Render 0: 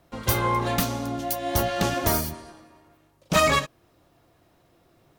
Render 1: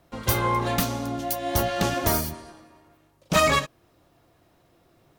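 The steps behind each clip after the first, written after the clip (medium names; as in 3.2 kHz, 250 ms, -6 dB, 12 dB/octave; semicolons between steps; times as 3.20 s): no audible change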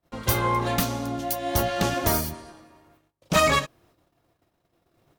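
gate -59 dBFS, range -21 dB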